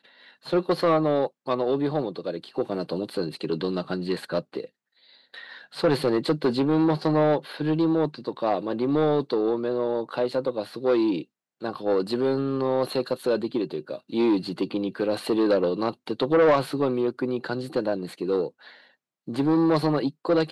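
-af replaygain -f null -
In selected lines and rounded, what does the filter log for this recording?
track_gain = +5.0 dB
track_peak = 0.200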